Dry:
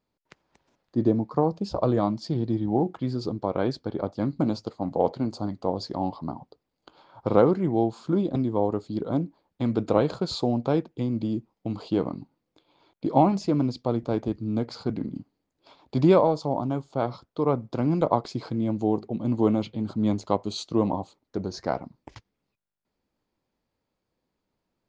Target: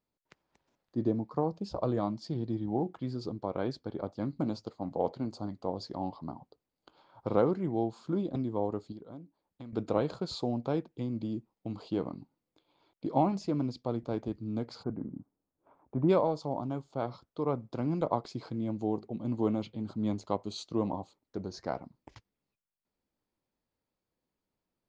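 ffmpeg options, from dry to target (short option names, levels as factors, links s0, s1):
-filter_complex "[0:a]asettb=1/sr,asplit=3[s0][s1][s2];[s0]atrim=end=8.924[s3];[s1]atrim=start=8.92:end=9.73,asetpts=PTS-STARTPTS,afade=t=in:d=0.004:c=qsin,afade=t=out:st=0.806:d=0.004:c=qsin,acompressor=threshold=0.00794:ratio=2.5[s4];[s2]atrim=start=9.726[s5];[s3][s4]acrossfade=d=0.004:c1=hsin:c2=qsin[s6];[s6][s5]acrossfade=d=0.004:c1=qsin:c2=hsin,asplit=3[s7][s8][s9];[s7]afade=t=out:st=14.82:d=0.02[s10];[s8]lowpass=f=1500:w=0.5412,lowpass=f=1500:w=1.3066,afade=t=in:st=14.82:d=0.02,afade=t=out:st=16.08:d=0.02[s11];[s9]afade=t=in:st=16.08:d=0.02[s12];[s10][s11][s12]amix=inputs=3:normalize=0,volume=0.422"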